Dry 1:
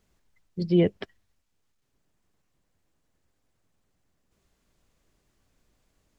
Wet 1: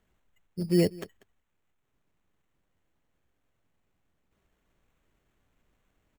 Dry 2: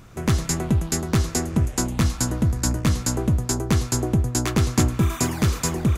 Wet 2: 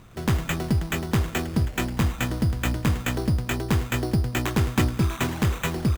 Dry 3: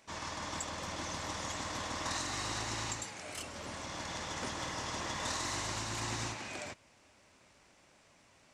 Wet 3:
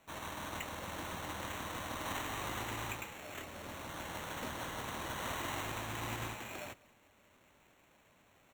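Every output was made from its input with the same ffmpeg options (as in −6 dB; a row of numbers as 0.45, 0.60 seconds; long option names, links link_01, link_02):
-filter_complex "[0:a]asplit=2[link_01][link_02];[link_02]adelay=192.4,volume=-22dB,highshelf=frequency=4000:gain=-4.33[link_03];[link_01][link_03]amix=inputs=2:normalize=0,acrusher=samples=9:mix=1:aa=0.000001,volume=-2.5dB"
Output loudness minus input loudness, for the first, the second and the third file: −2.5, −2.5, −3.0 LU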